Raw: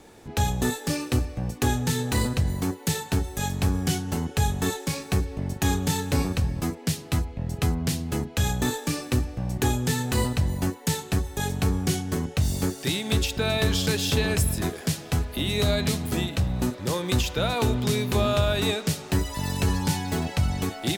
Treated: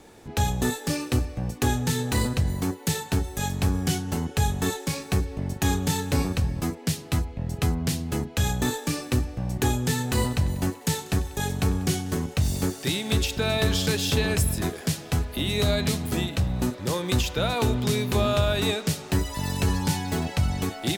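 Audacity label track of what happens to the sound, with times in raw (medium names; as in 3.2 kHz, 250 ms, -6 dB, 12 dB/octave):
10.030000	13.960000	thinning echo 96 ms, feedback 75%, level -19 dB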